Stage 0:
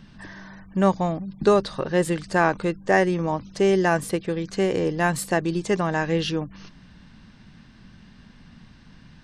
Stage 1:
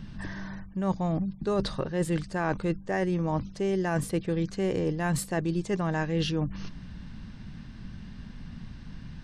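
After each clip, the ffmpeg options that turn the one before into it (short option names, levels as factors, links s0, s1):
-af "lowshelf=f=190:g=10.5,areverse,acompressor=threshold=0.0631:ratio=10,areverse"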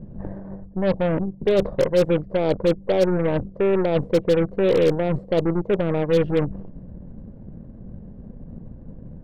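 -af "lowpass=f=530:t=q:w=4.9,aeval=exprs='0.211*(cos(1*acos(clip(val(0)/0.211,-1,1)))-cos(1*PI/2))+0.0211*(cos(8*acos(clip(val(0)/0.211,-1,1)))-cos(8*PI/2))':c=same,volume=1.33"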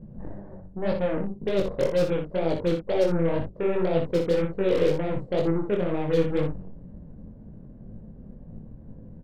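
-filter_complex "[0:a]flanger=delay=18:depth=6.6:speed=2,asplit=2[s0][s1];[s1]aecho=0:1:28|60:0.282|0.447[s2];[s0][s2]amix=inputs=2:normalize=0,volume=0.75"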